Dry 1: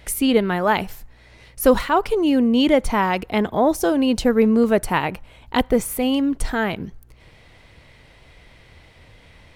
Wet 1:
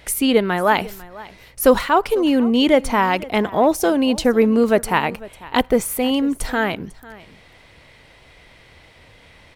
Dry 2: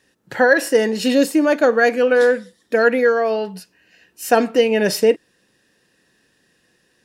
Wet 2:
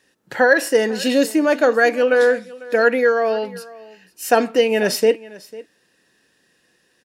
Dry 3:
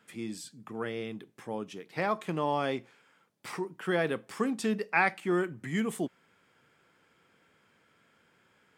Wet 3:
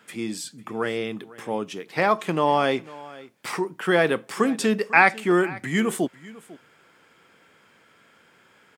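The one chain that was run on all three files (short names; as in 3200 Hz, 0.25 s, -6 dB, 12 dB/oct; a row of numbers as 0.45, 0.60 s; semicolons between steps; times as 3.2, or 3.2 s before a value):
low shelf 190 Hz -7 dB; echo 0.498 s -20 dB; normalise peaks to -1.5 dBFS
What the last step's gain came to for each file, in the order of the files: +3.0, +0.5, +10.0 dB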